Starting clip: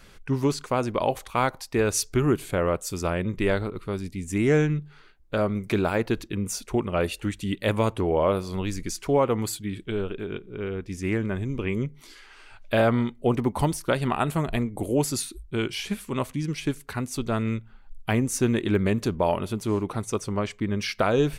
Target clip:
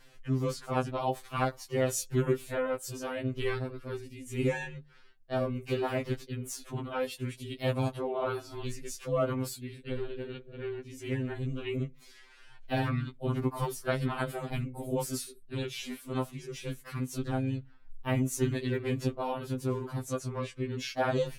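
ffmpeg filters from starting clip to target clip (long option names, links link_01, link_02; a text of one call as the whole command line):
ffmpeg -i in.wav -filter_complex "[0:a]asplit=2[link_01][link_02];[link_02]asetrate=52444,aresample=44100,atempo=0.840896,volume=-2dB[link_03];[link_01][link_03]amix=inputs=2:normalize=0,afftfilt=real='re*2.45*eq(mod(b,6),0)':imag='im*2.45*eq(mod(b,6),0)':win_size=2048:overlap=0.75,volume=-7.5dB" out.wav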